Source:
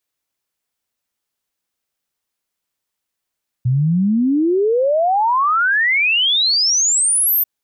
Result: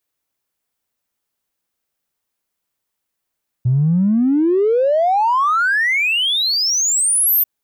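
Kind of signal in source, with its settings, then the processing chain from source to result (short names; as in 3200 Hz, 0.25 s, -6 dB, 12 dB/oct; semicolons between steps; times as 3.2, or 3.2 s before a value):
log sweep 120 Hz -> 14000 Hz 3.79 s -12.5 dBFS
high shelf 2500 Hz -6.5 dB; in parallel at -9 dB: soft clip -25 dBFS; on the sum: high shelf 8200 Hz +7.5 dB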